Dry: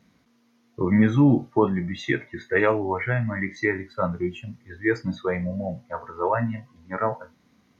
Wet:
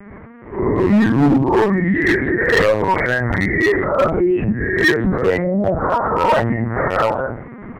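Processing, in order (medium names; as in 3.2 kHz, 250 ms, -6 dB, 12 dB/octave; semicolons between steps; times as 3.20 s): reverse spectral sustain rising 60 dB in 0.51 s; recorder AGC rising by 5.5 dB/s; elliptic low-pass 2 kHz, stop band 80 dB; speakerphone echo 140 ms, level -29 dB; simulated room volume 150 m³, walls furnished, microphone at 0.99 m; LPC vocoder at 8 kHz pitch kept; high-pass 88 Hz 6 dB/octave; overload inside the chain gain 17 dB; compression 2.5:1, threshold -38 dBFS, peak gain reduction 12.5 dB; loudness maximiser +33.5 dB; 3.84–6.10 s: three bands expanded up and down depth 40%; trim -8.5 dB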